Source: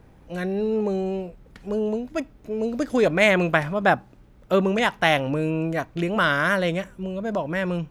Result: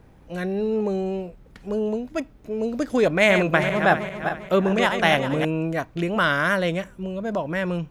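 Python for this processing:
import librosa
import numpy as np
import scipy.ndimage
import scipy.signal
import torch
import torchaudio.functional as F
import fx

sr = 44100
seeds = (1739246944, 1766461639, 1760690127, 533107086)

y = fx.reverse_delay_fb(x, sr, ms=199, feedback_pct=60, wet_db=-7.0, at=(3.1, 5.45))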